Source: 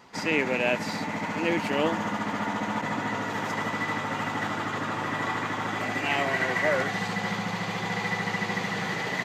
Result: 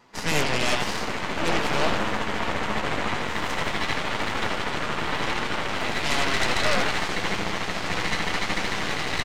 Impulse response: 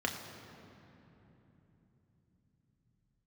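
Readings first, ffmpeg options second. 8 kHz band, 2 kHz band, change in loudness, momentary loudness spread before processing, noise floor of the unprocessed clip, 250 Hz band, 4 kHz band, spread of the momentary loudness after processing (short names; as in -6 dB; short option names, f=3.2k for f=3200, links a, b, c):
+8.0 dB, +2.0 dB, +2.0 dB, 5 LU, -33 dBFS, -1.0 dB, +8.0 dB, 5 LU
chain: -filter_complex "[0:a]asplit=8[a][b][c][d][e][f][g][h];[b]adelay=87,afreqshift=110,volume=-6.5dB[i];[c]adelay=174,afreqshift=220,volume=-11.5dB[j];[d]adelay=261,afreqshift=330,volume=-16.6dB[k];[e]adelay=348,afreqshift=440,volume=-21.6dB[l];[f]adelay=435,afreqshift=550,volume=-26.6dB[m];[g]adelay=522,afreqshift=660,volume=-31.7dB[n];[h]adelay=609,afreqshift=770,volume=-36.7dB[o];[a][i][j][k][l][m][n][o]amix=inputs=8:normalize=0,aeval=exprs='0.335*(cos(1*acos(clip(val(0)/0.335,-1,1)))-cos(1*PI/2))+0.133*(cos(8*acos(clip(val(0)/0.335,-1,1)))-cos(8*PI/2))':c=same,flanger=delay=8.1:depth=5.6:regen=-53:speed=0.92:shape=triangular"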